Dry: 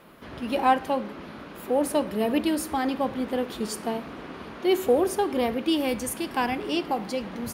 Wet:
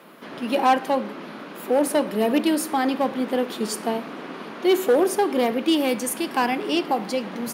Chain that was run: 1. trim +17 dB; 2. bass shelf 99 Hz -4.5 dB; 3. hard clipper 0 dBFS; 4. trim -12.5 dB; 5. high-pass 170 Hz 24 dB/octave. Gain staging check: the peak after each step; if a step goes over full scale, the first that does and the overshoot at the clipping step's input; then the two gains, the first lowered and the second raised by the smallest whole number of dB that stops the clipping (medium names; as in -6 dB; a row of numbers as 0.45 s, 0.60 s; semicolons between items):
+8.0 dBFS, +8.0 dBFS, 0.0 dBFS, -12.5 dBFS, -7.5 dBFS; step 1, 8.0 dB; step 1 +9 dB, step 4 -4.5 dB